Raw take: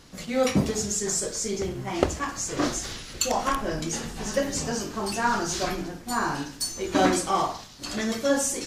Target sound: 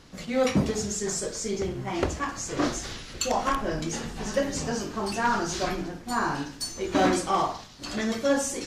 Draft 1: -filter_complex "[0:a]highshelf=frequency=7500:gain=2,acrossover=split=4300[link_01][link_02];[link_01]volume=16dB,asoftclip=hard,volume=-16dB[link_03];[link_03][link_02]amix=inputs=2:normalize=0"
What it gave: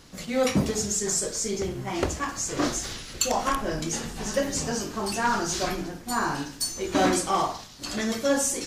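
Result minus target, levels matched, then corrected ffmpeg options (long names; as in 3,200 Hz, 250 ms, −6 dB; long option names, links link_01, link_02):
8,000 Hz band +4.0 dB
-filter_complex "[0:a]highshelf=frequency=7500:gain=-9.5,acrossover=split=4300[link_01][link_02];[link_01]volume=16dB,asoftclip=hard,volume=-16dB[link_03];[link_03][link_02]amix=inputs=2:normalize=0"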